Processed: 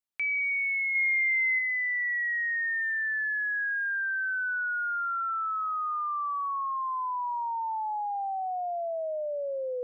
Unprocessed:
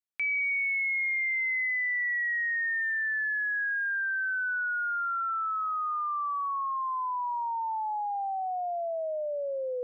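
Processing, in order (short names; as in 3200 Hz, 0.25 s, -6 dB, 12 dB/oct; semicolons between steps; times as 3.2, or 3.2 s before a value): 0.95–1.59 high shelf 2500 Hz +8 dB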